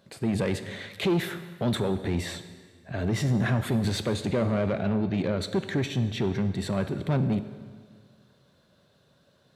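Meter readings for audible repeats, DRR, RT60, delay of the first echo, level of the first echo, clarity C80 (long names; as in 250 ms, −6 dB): no echo audible, 10.5 dB, 1.7 s, no echo audible, no echo audible, 13.0 dB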